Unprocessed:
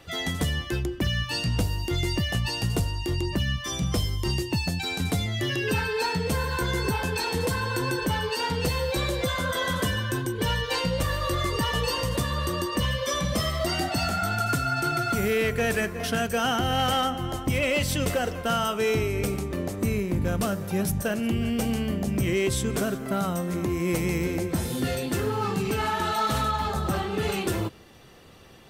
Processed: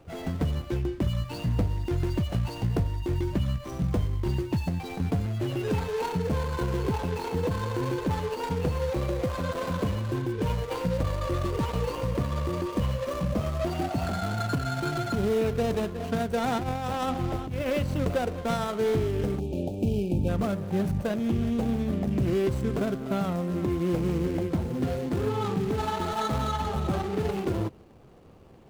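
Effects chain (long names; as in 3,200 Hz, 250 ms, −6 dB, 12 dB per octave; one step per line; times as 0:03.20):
running median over 25 samples
0:16.51–0:17.70: compressor whose output falls as the input rises −28 dBFS, ratio −0.5
0:19.39–0:20.29: gain on a spectral selection 910–2,300 Hz −25 dB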